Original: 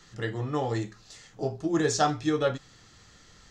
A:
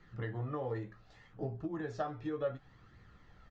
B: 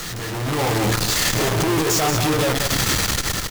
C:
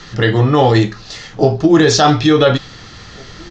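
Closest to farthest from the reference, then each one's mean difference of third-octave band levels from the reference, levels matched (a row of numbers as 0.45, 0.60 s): C, A, B; 3.5, 5.5, 18.0 dB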